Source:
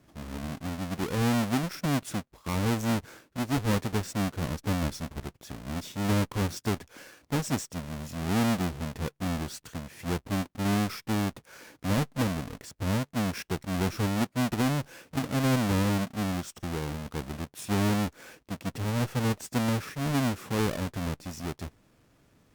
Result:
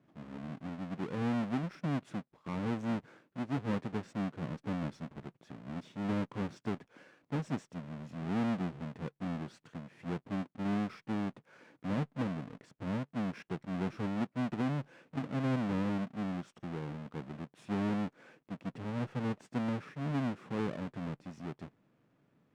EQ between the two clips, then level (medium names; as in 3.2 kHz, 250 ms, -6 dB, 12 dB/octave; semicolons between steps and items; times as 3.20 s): distance through air 110 m; resonant low shelf 100 Hz -13 dB, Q 1.5; peaking EQ 5.4 kHz -7 dB 1.5 oct; -7.5 dB